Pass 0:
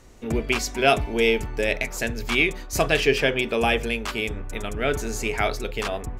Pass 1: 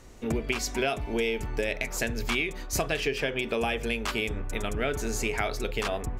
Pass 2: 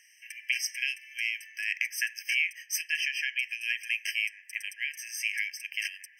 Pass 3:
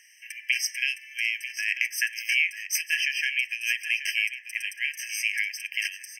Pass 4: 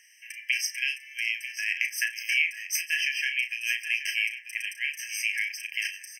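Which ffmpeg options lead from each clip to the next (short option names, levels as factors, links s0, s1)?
-af "acompressor=threshold=0.0631:ratio=12"
-af "afftfilt=real='re*eq(mod(floor(b*sr/1024/1600),2),1)':imag='im*eq(mod(floor(b*sr/1024/1600),2),1)':win_size=1024:overlap=0.75,volume=1.41"
-af "aecho=1:1:942:0.266,volume=1.58"
-filter_complex "[0:a]asplit=2[s0][s1];[s1]adelay=35,volume=0.376[s2];[s0][s2]amix=inputs=2:normalize=0,volume=0.794"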